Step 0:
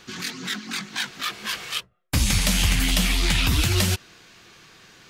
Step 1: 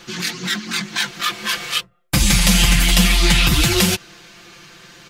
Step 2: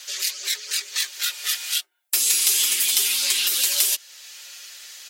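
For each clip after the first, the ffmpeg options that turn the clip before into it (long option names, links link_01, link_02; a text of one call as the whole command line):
ffmpeg -i in.wav -af "aecho=1:1:5.8:0.76,volume=5dB" out.wav
ffmpeg -i in.wav -af "aderivative,acompressor=threshold=-41dB:ratio=1.5,afreqshift=210,volume=9dB" out.wav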